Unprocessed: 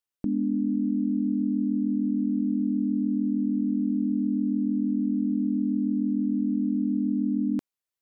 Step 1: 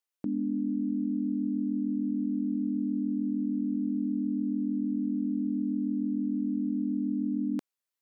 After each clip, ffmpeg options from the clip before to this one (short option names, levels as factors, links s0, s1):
-af "highpass=f=320:p=1"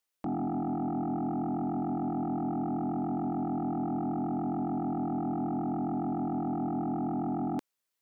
-af "aeval=exprs='0.0841*sin(PI/2*2.51*val(0)/0.0841)':c=same,aeval=exprs='0.0841*(cos(1*acos(clip(val(0)/0.0841,-1,1)))-cos(1*PI/2))+0.00106*(cos(3*acos(clip(val(0)/0.0841,-1,1)))-cos(3*PI/2))':c=same,volume=0.447"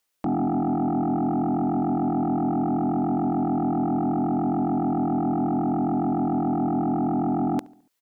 -filter_complex "[0:a]asplit=2[s0][s1];[s1]adelay=71,lowpass=f=2000:p=1,volume=0.0841,asplit=2[s2][s3];[s3]adelay=71,lowpass=f=2000:p=1,volume=0.5,asplit=2[s4][s5];[s5]adelay=71,lowpass=f=2000:p=1,volume=0.5,asplit=2[s6][s7];[s7]adelay=71,lowpass=f=2000:p=1,volume=0.5[s8];[s0][s2][s4][s6][s8]amix=inputs=5:normalize=0,volume=2.51"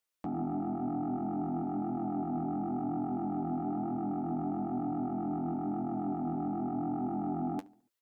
-af "flanger=delay=8.3:depth=9.2:regen=37:speed=0.51:shape=triangular,volume=0.473"